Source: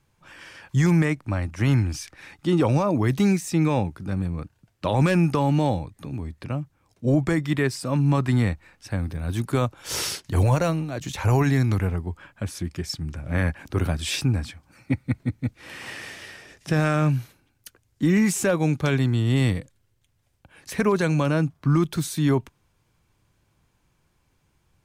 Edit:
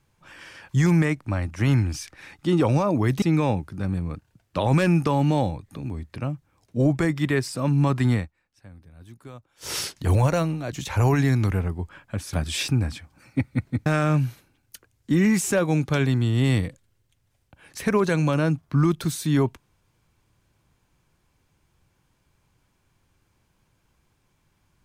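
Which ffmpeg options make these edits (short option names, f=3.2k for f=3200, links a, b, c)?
-filter_complex "[0:a]asplit=6[a][b][c][d][e][f];[a]atrim=end=3.222[g];[b]atrim=start=3.498:end=8.59,asetpts=PTS-STARTPTS,afade=t=out:st=4.912:d=0.18:silence=0.105925[h];[c]atrim=start=8.59:end=9.88,asetpts=PTS-STARTPTS,volume=-19.5dB[i];[d]atrim=start=9.88:end=12.612,asetpts=PTS-STARTPTS,afade=t=in:d=0.18:silence=0.105925[j];[e]atrim=start=13.858:end=15.392[k];[f]atrim=start=16.778[l];[h][i][j]concat=n=3:v=0:a=1[m];[g][m]acrossfade=d=0.004:c1=hsin:c2=hsin[n];[n][k]acrossfade=d=0.004:c1=hsin:c2=hsin[o];[o][l]acrossfade=d=0.004:c1=hsin:c2=hsin"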